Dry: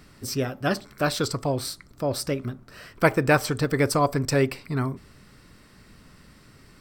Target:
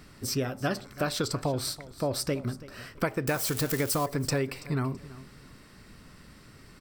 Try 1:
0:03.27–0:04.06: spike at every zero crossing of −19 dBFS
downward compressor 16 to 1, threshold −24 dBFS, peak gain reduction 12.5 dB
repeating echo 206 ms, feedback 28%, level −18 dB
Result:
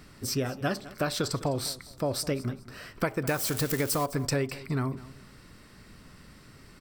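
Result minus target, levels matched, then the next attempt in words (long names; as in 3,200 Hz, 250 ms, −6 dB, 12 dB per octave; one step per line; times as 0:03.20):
echo 125 ms early
0:03.27–0:04.06: spike at every zero crossing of −19 dBFS
downward compressor 16 to 1, threshold −24 dBFS, peak gain reduction 12.5 dB
repeating echo 331 ms, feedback 28%, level −18 dB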